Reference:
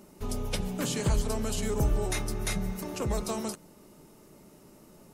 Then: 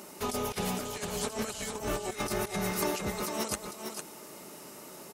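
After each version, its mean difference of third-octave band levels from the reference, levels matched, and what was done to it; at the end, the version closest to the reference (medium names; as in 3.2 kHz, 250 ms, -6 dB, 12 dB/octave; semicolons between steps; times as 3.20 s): 8.5 dB: high-pass 780 Hz 6 dB/octave; compressor with a negative ratio -42 dBFS, ratio -0.5; delay 454 ms -6 dB; trim +8 dB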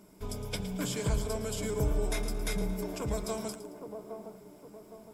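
3.0 dB: rippled EQ curve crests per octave 1.7, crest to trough 8 dB; feedback echo behind a band-pass 813 ms, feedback 40%, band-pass 490 Hz, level -6 dB; bit-crushed delay 112 ms, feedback 35%, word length 9-bit, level -12.5 dB; trim -4.5 dB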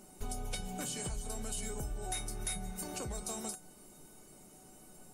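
5.0 dB: peaking EQ 8.8 kHz +10 dB 0.66 oct; compression, threshold -33 dBFS, peak gain reduction 11.5 dB; feedback comb 750 Hz, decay 0.22 s, harmonics all, mix 90%; trim +13 dB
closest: second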